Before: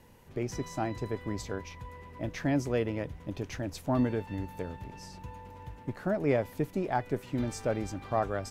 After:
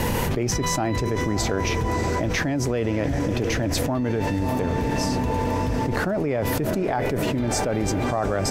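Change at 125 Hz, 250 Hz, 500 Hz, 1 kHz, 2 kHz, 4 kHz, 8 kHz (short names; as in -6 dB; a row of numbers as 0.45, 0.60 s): +11.0, +9.0, +8.5, +10.0, +12.5, +16.5, +17.5 dB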